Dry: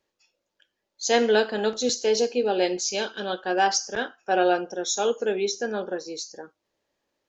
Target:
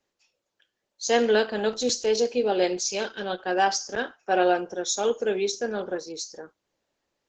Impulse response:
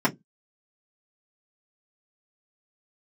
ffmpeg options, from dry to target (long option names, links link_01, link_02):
-filter_complex "[0:a]asettb=1/sr,asplit=3[link_01][link_02][link_03];[link_01]atrim=end=1.064[link_04];[link_02]atrim=start=1.06:end=2.15,asetpts=PTS-STARTPTS,afade=type=in:duration=0.004:curve=qsin,afade=type=out:start_time=1.086:duration=0.004:curve=qsin,asubboost=boost=3:cutoff=160[link_05];[link_03]atrim=start=2.146[link_06];[link_04][link_05]acrossfade=duration=0.004:curve1=hsin:curve2=qsin[link_07];[link_07][link_06]acrossfade=duration=0.004:curve1=qsin:curve2=hsin" -ar 48000 -c:a libopus -b:a 12k